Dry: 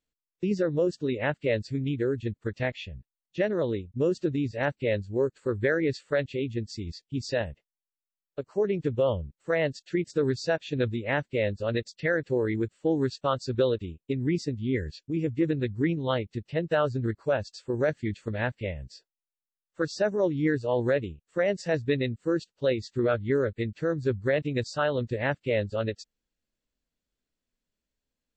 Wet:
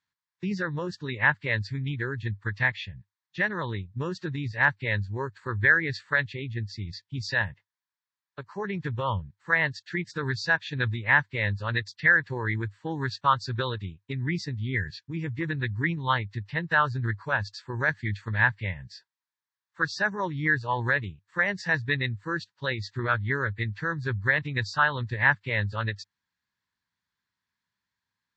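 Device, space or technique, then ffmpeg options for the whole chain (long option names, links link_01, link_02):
car door speaker: -filter_complex "[0:a]highpass=100,equalizer=frequency=100:width_type=q:width=4:gain=9,equalizer=frequency=190:width_type=q:width=4:gain=5,equalizer=frequency=650:width_type=q:width=4:gain=-5,equalizer=frequency=960:width_type=q:width=4:gain=6,equalizer=frequency=1700:width_type=q:width=4:gain=8,equalizer=frequency=2800:width_type=q:width=4:gain=-5,lowpass=frequency=7000:width=0.5412,lowpass=frequency=7000:width=1.3066,asettb=1/sr,asplit=3[link_01][link_02][link_03];[link_01]atrim=end=6.334[link_04];[link_02]atrim=start=6.33:end=6.93,asetpts=PTS-STARTPTS,afade=type=in:duration=0.004:curve=qsin,afade=type=out:start_time=0.596:duration=0.004:curve=qsin,lowpass=frequency=3700:poles=1[link_05];[link_03]atrim=start=6.926[link_06];[link_04][link_05]acrossfade=duration=0.004:curve1=hsin:curve2=qsin[link_07];[link_07][link_06]acrossfade=duration=0.004:curve1=qsin:curve2=hsin,equalizer=frequency=125:width_type=o:width=1:gain=4,equalizer=frequency=250:width_type=o:width=1:gain=-6,equalizer=frequency=500:width_type=o:width=1:gain=-9,equalizer=frequency=1000:width_type=o:width=1:gain=9,equalizer=frequency=2000:width_type=o:width=1:gain=5,equalizer=frequency=4000:width_type=o:width=1:gain=6,volume=-2dB"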